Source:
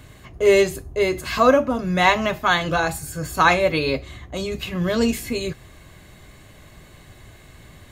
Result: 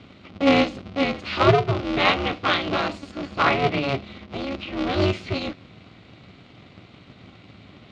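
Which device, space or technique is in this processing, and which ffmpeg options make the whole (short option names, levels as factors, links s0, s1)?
ring modulator pedal into a guitar cabinet: -filter_complex "[0:a]asettb=1/sr,asplit=3[s0][s1][s2];[s0]atrim=end=3.114[s3];[s1]atrim=start=3.11:end=4.89,asetpts=PTS-STARTPTS,afade=t=in:d=0.004:c=qsin,afade=t=out:st=1.776:d=0.004:c=qsin,acrossover=split=2700[s4][s5];[s5]acompressor=threshold=0.01:ratio=4:attack=1:release=60[s6];[s4][s6]amix=inputs=2:normalize=0[s7];[s2]atrim=start=4.886[s8];[s3][s7]acrossfade=d=0.004:c1=hsin:c2=qsin[s9];[s9][s8]acrossfade=d=0.004:c1=qsin:c2=hsin,aeval=exprs='val(0)*sgn(sin(2*PI*140*n/s))':c=same,highpass=99,equalizer=f=110:t=q:w=4:g=6,equalizer=f=230:t=q:w=4:g=-4,equalizer=f=480:t=q:w=4:g=-7,equalizer=f=910:t=q:w=4:g=-9,equalizer=f=1700:t=q:w=4:g=-10,lowpass=f=4200:w=0.5412,lowpass=f=4200:w=1.3066,volume=1.12"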